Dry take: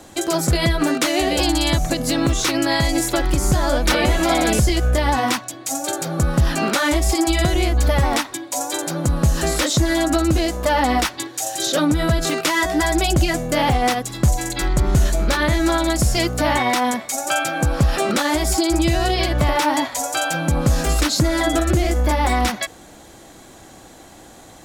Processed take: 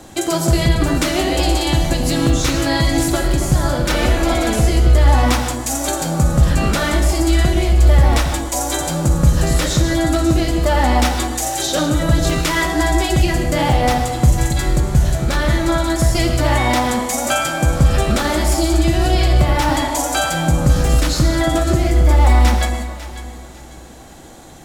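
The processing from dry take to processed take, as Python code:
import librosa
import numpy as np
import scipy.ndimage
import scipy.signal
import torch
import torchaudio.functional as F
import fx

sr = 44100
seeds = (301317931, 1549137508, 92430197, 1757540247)

y = fx.low_shelf(x, sr, hz=220.0, db=5.0)
y = fx.rider(y, sr, range_db=4, speed_s=0.5)
y = fx.echo_alternate(y, sr, ms=274, hz=1100.0, feedback_pct=53, wet_db=-8)
y = fx.rev_gated(y, sr, seeds[0], gate_ms=210, shape='flat', drr_db=4.0)
y = y * librosa.db_to_amplitude(-1.5)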